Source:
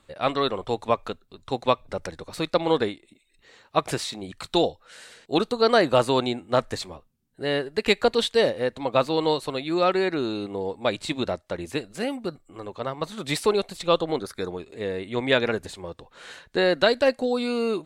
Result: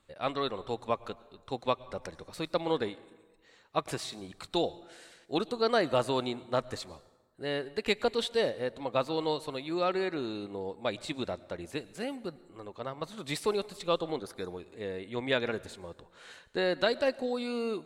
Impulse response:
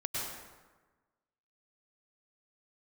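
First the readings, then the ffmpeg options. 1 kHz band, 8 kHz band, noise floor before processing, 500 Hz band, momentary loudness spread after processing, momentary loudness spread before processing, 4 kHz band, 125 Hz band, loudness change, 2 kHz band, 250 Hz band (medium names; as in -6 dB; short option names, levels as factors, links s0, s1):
-8.0 dB, -8.0 dB, -63 dBFS, -8.0 dB, 15 LU, 14 LU, -8.0 dB, -8.0 dB, -8.0 dB, -8.0 dB, -8.0 dB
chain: -filter_complex "[0:a]asplit=2[s0][s1];[1:a]atrim=start_sample=2205,highshelf=f=9500:g=9.5[s2];[s1][s2]afir=irnorm=-1:irlink=0,volume=0.075[s3];[s0][s3]amix=inputs=2:normalize=0,volume=0.376"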